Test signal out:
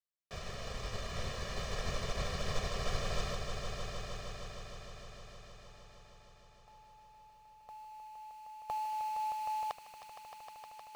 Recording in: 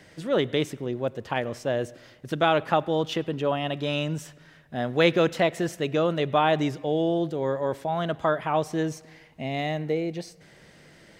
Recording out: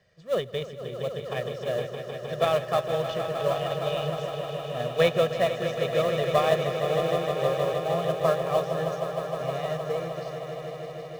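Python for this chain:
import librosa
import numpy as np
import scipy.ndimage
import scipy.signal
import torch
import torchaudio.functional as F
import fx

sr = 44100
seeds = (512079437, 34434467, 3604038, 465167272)

p1 = scipy.signal.sosfilt(scipy.signal.butter(4, 6500.0, 'lowpass', fs=sr, output='sos'), x)
p2 = p1 + 0.92 * np.pad(p1, (int(1.7 * sr / 1000.0), 0))[:len(p1)]
p3 = fx.sample_hold(p2, sr, seeds[0], rate_hz=3500.0, jitter_pct=20)
p4 = p2 + (p3 * 10.0 ** (-12.0 / 20.0))
p5 = fx.echo_swell(p4, sr, ms=155, loudest=5, wet_db=-8.5)
p6 = fx.upward_expand(p5, sr, threshold_db=-34.0, expansion=1.5)
y = p6 * 10.0 ** (-6.0 / 20.0)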